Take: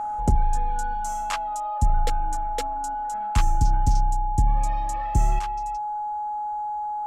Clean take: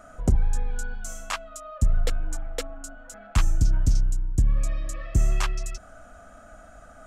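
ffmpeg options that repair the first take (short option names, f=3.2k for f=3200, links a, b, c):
-af "bandreject=f=840:w=30,asetnsamples=n=441:p=0,asendcmd='5.39 volume volume 10dB',volume=0dB"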